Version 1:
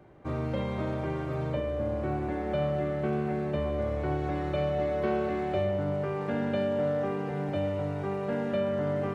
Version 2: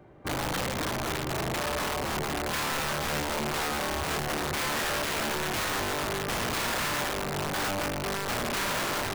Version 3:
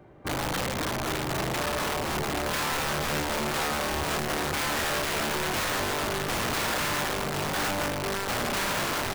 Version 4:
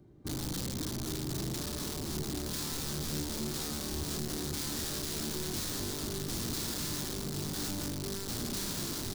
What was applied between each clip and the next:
wrapped overs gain 26.5 dB; gain +1.5 dB
echo 0.806 s -9 dB; gain +1 dB
band shelf 1200 Hz -15 dB 2.9 oct; gain -3 dB

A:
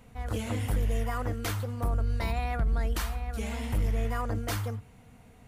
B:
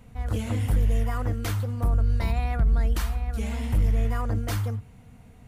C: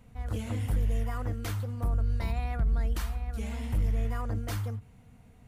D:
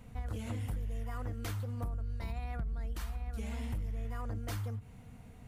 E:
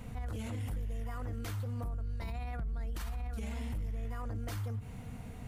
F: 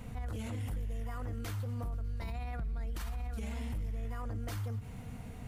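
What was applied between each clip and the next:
tone controls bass +6 dB, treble 0 dB
ending taper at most 420 dB/s; gain -5.5 dB
compressor 6:1, threshold -38 dBFS, peak gain reduction 14.5 dB; gain +3 dB
limiter -39 dBFS, peak gain reduction 11.5 dB; gain +7.5 dB
thin delay 0.12 s, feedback 83%, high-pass 1800 Hz, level -21 dB

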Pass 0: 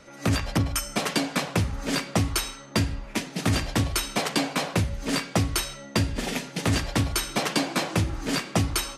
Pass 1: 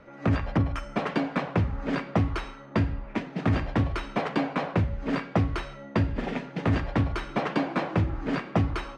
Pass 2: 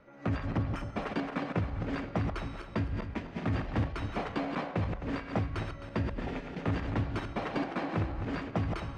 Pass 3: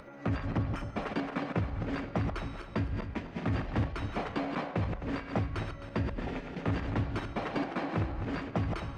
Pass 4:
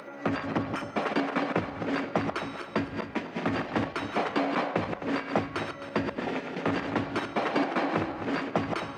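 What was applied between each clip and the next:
LPF 1800 Hz 12 dB/oct
regenerating reverse delay 0.131 s, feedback 53%, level -5.5 dB; gain -7.5 dB
upward compressor, threshold -42 dBFS
HPF 250 Hz 12 dB/oct; gain +7.5 dB

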